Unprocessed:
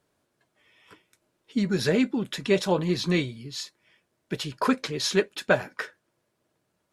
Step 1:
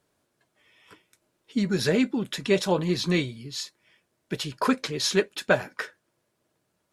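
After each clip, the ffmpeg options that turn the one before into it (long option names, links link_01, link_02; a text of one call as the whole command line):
ffmpeg -i in.wav -af "equalizer=frequency=11000:width=0.34:gain=2.5" out.wav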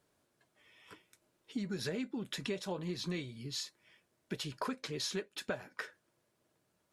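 ffmpeg -i in.wav -af "acompressor=threshold=-33dB:ratio=5,volume=-3dB" out.wav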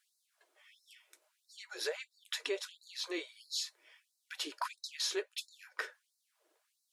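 ffmpeg -i in.wav -af "afftfilt=real='re*gte(b*sr/1024,290*pow(3900/290,0.5+0.5*sin(2*PI*1.5*pts/sr)))':imag='im*gte(b*sr/1024,290*pow(3900/290,0.5+0.5*sin(2*PI*1.5*pts/sr)))':win_size=1024:overlap=0.75,volume=3dB" out.wav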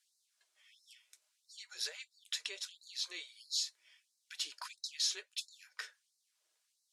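ffmpeg -i in.wav -af "bandpass=frequency=5900:width_type=q:width=0.84:csg=0,volume=3dB" out.wav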